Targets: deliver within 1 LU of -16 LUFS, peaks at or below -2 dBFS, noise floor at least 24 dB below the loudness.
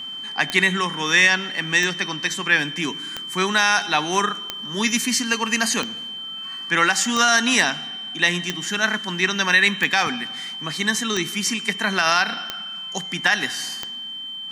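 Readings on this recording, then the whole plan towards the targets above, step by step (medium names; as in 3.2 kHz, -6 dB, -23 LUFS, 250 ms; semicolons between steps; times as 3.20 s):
clicks found 11; steady tone 3.1 kHz; tone level -30 dBFS; loudness -20.5 LUFS; peak level -4.0 dBFS; loudness target -16.0 LUFS
-> de-click; band-stop 3.1 kHz, Q 30; trim +4.5 dB; peak limiter -2 dBFS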